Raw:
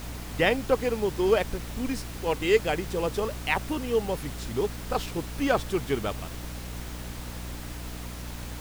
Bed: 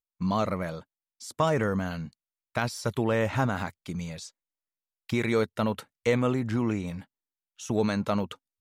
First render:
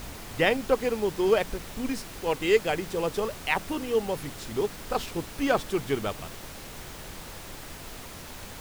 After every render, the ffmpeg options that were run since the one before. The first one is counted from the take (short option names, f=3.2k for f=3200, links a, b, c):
-af "bandreject=f=60:t=h:w=4,bandreject=f=120:t=h:w=4,bandreject=f=180:t=h:w=4,bandreject=f=240:t=h:w=4,bandreject=f=300:t=h:w=4"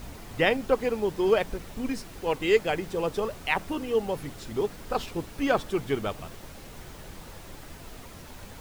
-af "afftdn=nr=6:nf=-42"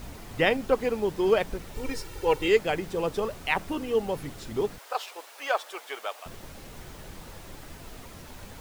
-filter_complex "[0:a]asettb=1/sr,asplit=3[a][b][c];[a]atrim=end=1.744[d];[b]atrim=start=1.74:end=2.48,asetpts=PTS-STARTPTS,afade=t=in:d=0.004:c=qsin,afade=t=out:st=0.736:d=0.004:c=qsin,aecho=1:1:2.2:0.82,atrim=end_sample=32634[e];[c]atrim=start=2.476[f];[d][e]acrossfade=d=0.004:c1=hsin:c2=qsin[g];[g][f]acrossfade=d=0.004:c1=qsin:c2=hsin,asettb=1/sr,asplit=3[h][i][j];[h]atrim=end=4.784[k];[i]atrim=start=4.78:end=6.26,asetpts=PTS-STARTPTS,afade=t=in:d=0.004:c=qsin,afade=t=out:st=1.476:d=0.004:c=qsin,highpass=f=590:w=0.5412,highpass=f=590:w=1.3066[l];[j]atrim=start=6.256[m];[k][l]acrossfade=d=0.004:c1=hsin:c2=qsin[n];[n][m]acrossfade=d=0.004:c1=qsin:c2=hsin"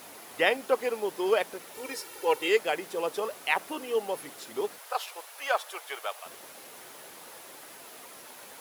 -af "highpass=440,equalizer=f=11k:t=o:w=0.36:g=9.5"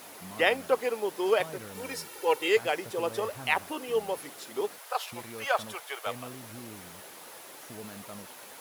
-filter_complex "[1:a]volume=-18.5dB[a];[0:a][a]amix=inputs=2:normalize=0"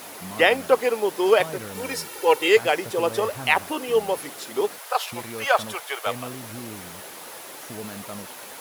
-af "volume=7.5dB,alimiter=limit=-3dB:level=0:latency=1"